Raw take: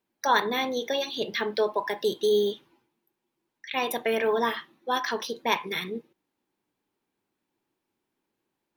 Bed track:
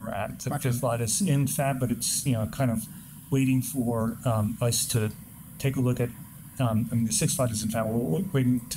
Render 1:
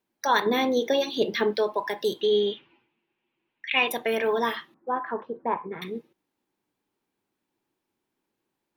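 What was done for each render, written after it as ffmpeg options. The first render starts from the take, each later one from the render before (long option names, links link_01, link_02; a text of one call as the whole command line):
ffmpeg -i in.wav -filter_complex "[0:a]asettb=1/sr,asplit=3[link_01][link_02][link_03];[link_01]atrim=end=0.464[link_04];[link_02]atrim=start=0.46:end=1.53,asetpts=PTS-STARTPTS,afade=type=in:duration=0.004:curve=qsin,afade=type=out:start_time=1.066:duration=0.004:curve=qsin,equalizer=frequency=320:width_type=o:width=2:gain=8[link_05];[link_03]atrim=start=1.526[link_06];[link_04][link_05]acrossfade=duration=0.004:curve1=hsin:curve2=qsin[link_07];[link_07][link_06]acrossfade=duration=0.004:curve1=qsin:curve2=hsin,asettb=1/sr,asplit=3[link_08][link_09][link_10];[link_08]atrim=end=2.214[link_11];[link_09]atrim=start=2.21:end=3.88,asetpts=PTS-STARTPTS,afade=type=in:duration=0.004:curve=qsin,afade=type=out:start_time=1.666:duration=0.004:curve=qsin,lowpass=frequency=2700:width_type=q:width=3.7[link_12];[link_10]atrim=start=3.876[link_13];[link_11][link_12]acrossfade=duration=0.004:curve1=hsin:curve2=qsin[link_14];[link_14][link_13]acrossfade=duration=0.004:curve1=qsin:curve2=hsin,asettb=1/sr,asplit=3[link_15][link_16][link_17];[link_15]atrim=end=4.744[link_18];[link_16]atrim=start=4.74:end=5.82,asetpts=PTS-STARTPTS,afade=type=in:duration=0.004:curve=qsin,afade=type=out:start_time=1.076:duration=0.004:curve=qsin,lowpass=frequency=1400:width=0.5412,lowpass=frequency=1400:width=1.3066[link_19];[link_17]atrim=start=5.816[link_20];[link_18][link_19]acrossfade=duration=0.004:curve1=hsin:curve2=qsin[link_21];[link_21][link_20]acrossfade=duration=0.004:curve1=qsin:curve2=hsin" out.wav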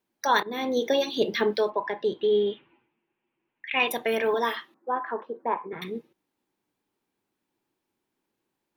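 ffmpeg -i in.wav -filter_complex "[0:a]asettb=1/sr,asplit=3[link_01][link_02][link_03];[link_01]atrim=end=1.704[link_04];[link_02]atrim=start=1.7:end=3.8,asetpts=PTS-STARTPTS,afade=type=in:duration=0.004:curve=qsin,afade=type=out:start_time=2.096:duration=0.004:curve=qsin,lowpass=2300[link_05];[link_03]atrim=start=3.796[link_06];[link_04][link_05]acrossfade=duration=0.004:curve1=hsin:curve2=qsin[link_07];[link_07][link_06]acrossfade=duration=0.004:curve1=qsin:curve2=hsin,asettb=1/sr,asplit=3[link_08][link_09][link_10];[link_08]atrim=end=4.344[link_11];[link_09]atrim=start=4.34:end=5.73,asetpts=PTS-STARTPTS,afade=type=in:duration=0.004:curve=qsin,afade=type=out:start_time=1.386:duration=0.004:curve=qsin,highpass=270[link_12];[link_10]atrim=start=5.726[link_13];[link_11][link_12]acrossfade=duration=0.004:curve1=hsin:curve2=qsin[link_14];[link_14][link_13]acrossfade=duration=0.004:curve1=qsin:curve2=hsin,asplit=2[link_15][link_16];[link_15]atrim=end=0.43,asetpts=PTS-STARTPTS,afade=type=out:start_time=0.426:duration=0.004:curve=hsin:silence=0.125893[link_17];[link_16]atrim=start=0.43,asetpts=PTS-STARTPTS,afade=type=in:duration=0.41:silence=0.125893[link_18];[link_17][link_18]concat=n=2:v=0:a=1" out.wav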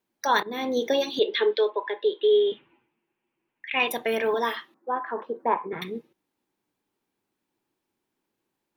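ffmpeg -i in.wav -filter_complex "[0:a]asettb=1/sr,asplit=3[link_01][link_02][link_03];[link_01]atrim=end=1.194[link_04];[link_02]atrim=start=1.19:end=2.52,asetpts=PTS-STARTPTS,afade=type=in:duration=0.004:curve=qsin,afade=type=out:start_time=1.326:duration=0.004:curve=qsin,highpass=frequency=370:width=0.5412,highpass=frequency=370:width=1.3066,equalizer=frequency=420:width_type=q:width=4:gain=5,equalizer=frequency=710:width_type=q:width=4:gain=-10,equalizer=frequency=1200:width_type=q:width=4:gain=-3,equalizer=frequency=3600:width_type=q:width=4:gain=10,lowpass=frequency=3700:width=0.5412,lowpass=frequency=3700:width=1.3066[link_05];[link_03]atrim=start=2.516[link_06];[link_04][link_05]acrossfade=duration=0.004:curve1=hsin:curve2=qsin[link_07];[link_07][link_06]acrossfade=duration=0.004:curve1=qsin:curve2=hsin,asplit=3[link_08][link_09][link_10];[link_08]atrim=end=5.172[link_11];[link_09]atrim=start=5.168:end=5.832,asetpts=PTS-STARTPTS,volume=3.5dB[link_12];[link_10]atrim=start=5.828[link_13];[link_11][link_12]acrossfade=duration=0.004:curve1=hsin:curve2=hsin[link_14];[link_14][link_13]acrossfade=duration=0.004:curve1=hsin:curve2=hsin" out.wav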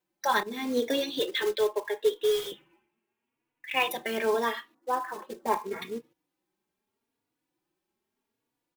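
ffmpeg -i in.wav -filter_complex "[0:a]acrusher=bits=4:mode=log:mix=0:aa=0.000001,asplit=2[link_01][link_02];[link_02]adelay=3.5,afreqshift=0.79[link_03];[link_01][link_03]amix=inputs=2:normalize=1" out.wav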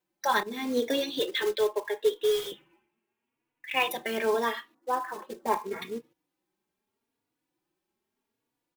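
ffmpeg -i in.wav -af anull out.wav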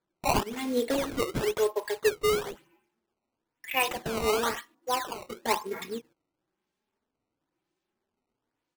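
ffmpeg -i in.wav -af "acrusher=samples=15:mix=1:aa=0.000001:lfo=1:lforange=24:lforate=1" out.wav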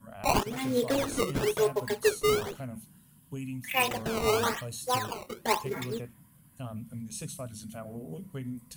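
ffmpeg -i in.wav -i bed.wav -filter_complex "[1:a]volume=-14dB[link_01];[0:a][link_01]amix=inputs=2:normalize=0" out.wav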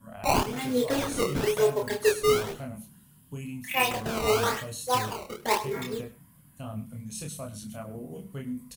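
ffmpeg -i in.wav -filter_complex "[0:a]asplit=2[link_01][link_02];[link_02]adelay=28,volume=-3dB[link_03];[link_01][link_03]amix=inputs=2:normalize=0,aecho=1:1:102:0.126" out.wav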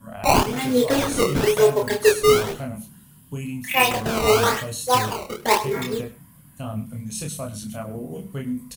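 ffmpeg -i in.wav -af "volume=7dB" out.wav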